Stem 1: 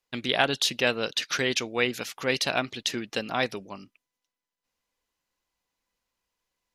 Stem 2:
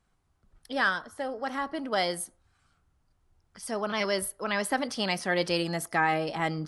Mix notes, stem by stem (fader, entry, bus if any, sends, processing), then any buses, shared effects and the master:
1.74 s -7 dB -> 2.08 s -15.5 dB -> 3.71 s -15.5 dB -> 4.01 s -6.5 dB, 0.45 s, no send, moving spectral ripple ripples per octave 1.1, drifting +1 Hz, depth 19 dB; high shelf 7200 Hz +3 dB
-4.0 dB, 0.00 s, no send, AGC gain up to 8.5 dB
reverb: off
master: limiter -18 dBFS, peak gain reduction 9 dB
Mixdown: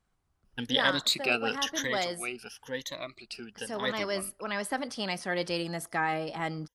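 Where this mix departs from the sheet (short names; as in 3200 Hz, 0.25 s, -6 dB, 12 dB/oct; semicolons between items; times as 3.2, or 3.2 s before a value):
stem 2: missing AGC gain up to 8.5 dB; master: missing limiter -18 dBFS, peak gain reduction 9 dB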